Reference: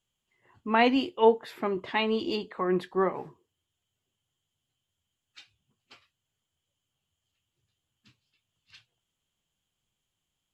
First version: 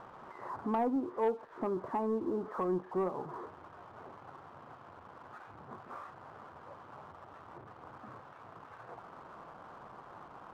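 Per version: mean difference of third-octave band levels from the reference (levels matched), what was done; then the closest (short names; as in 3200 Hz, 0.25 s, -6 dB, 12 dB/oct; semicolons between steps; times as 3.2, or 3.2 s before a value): 7.5 dB: switching spikes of -16.5 dBFS; steep low-pass 1200 Hz 36 dB/oct; compressor 2:1, threshold -40 dBFS, peak gain reduction 14 dB; sample leveller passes 1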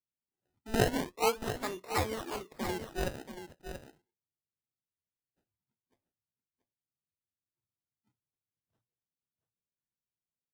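13.5 dB: low-pass opened by the level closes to 330 Hz, open at -21 dBFS; tilt +4 dB/oct; decimation with a swept rate 27×, swing 100% 0.41 Hz; on a send: echo 0.681 s -9.5 dB; on the sum: gain -5 dB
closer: first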